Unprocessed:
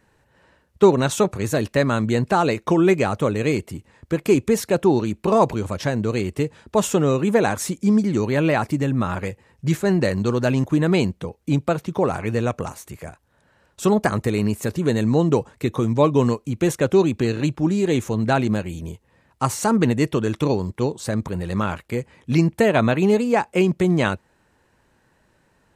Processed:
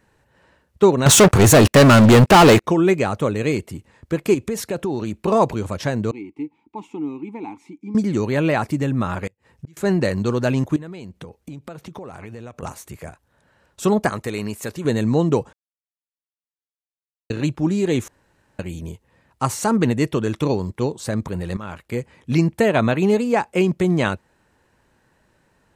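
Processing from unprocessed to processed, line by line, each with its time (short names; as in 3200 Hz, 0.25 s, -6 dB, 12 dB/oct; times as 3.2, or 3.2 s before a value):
1.06–2.64 sample leveller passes 5
4.34–5.23 compressor 5:1, threshold -20 dBFS
6.11–7.95 vowel filter u
9.27–9.77 flipped gate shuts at -23 dBFS, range -31 dB
10.76–12.63 compressor 16:1, threshold -31 dBFS
14.09–14.85 low shelf 410 Hz -8.5 dB
15.53–17.3 mute
18.08–18.59 room tone
21.57–21.97 fade in, from -15.5 dB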